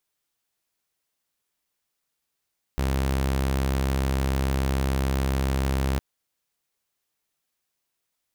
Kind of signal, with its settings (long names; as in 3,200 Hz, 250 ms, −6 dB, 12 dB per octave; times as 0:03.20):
tone saw 66.9 Hz −19.5 dBFS 3.21 s